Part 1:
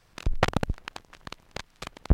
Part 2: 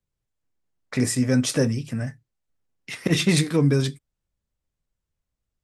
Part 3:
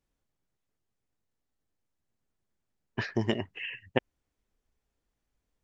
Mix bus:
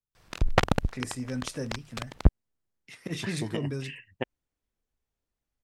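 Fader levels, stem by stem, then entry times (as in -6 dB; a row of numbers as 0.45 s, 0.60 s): +1.5 dB, -13.5 dB, -5.5 dB; 0.15 s, 0.00 s, 0.25 s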